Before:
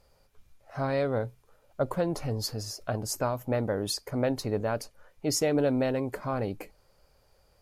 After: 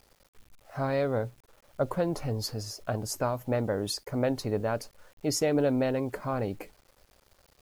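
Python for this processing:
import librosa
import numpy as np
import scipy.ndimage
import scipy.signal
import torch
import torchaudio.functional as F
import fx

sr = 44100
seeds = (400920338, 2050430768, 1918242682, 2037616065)

y = fx.high_shelf(x, sr, hz=4100.0, db=-2.5)
y = fx.quant_dither(y, sr, seeds[0], bits=10, dither='none')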